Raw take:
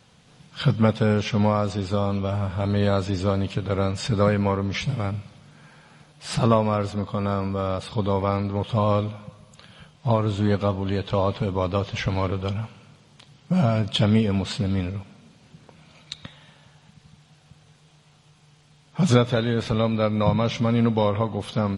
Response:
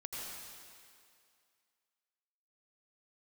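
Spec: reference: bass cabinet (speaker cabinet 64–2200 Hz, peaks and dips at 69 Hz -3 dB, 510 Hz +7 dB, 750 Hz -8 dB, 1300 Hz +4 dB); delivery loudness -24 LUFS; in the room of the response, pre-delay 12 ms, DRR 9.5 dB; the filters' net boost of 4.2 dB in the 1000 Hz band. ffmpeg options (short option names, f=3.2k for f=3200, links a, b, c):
-filter_complex "[0:a]equalizer=f=1k:t=o:g=5,asplit=2[a][b];[1:a]atrim=start_sample=2205,adelay=12[c];[b][c]afir=irnorm=-1:irlink=0,volume=-9.5dB[d];[a][d]amix=inputs=2:normalize=0,highpass=f=64:w=0.5412,highpass=f=64:w=1.3066,equalizer=f=69:t=q:w=4:g=-3,equalizer=f=510:t=q:w=4:g=7,equalizer=f=750:t=q:w=4:g=-8,equalizer=f=1.3k:t=q:w=4:g=4,lowpass=f=2.2k:w=0.5412,lowpass=f=2.2k:w=1.3066,volume=-3dB"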